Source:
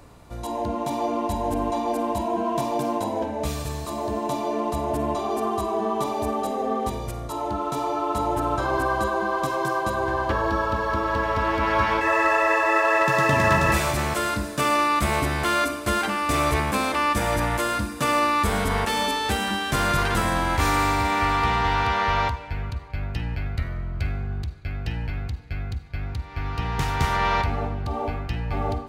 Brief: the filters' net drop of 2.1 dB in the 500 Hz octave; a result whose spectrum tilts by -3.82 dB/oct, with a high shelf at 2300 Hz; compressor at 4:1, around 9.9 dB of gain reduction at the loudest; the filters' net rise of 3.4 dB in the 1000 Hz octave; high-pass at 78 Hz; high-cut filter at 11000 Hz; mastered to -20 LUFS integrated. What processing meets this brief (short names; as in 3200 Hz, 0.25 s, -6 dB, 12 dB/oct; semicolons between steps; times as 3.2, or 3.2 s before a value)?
HPF 78 Hz; LPF 11000 Hz; bell 500 Hz -5 dB; bell 1000 Hz +4 dB; high shelf 2300 Hz +6.5 dB; compressor 4:1, threshold -26 dBFS; gain +8.5 dB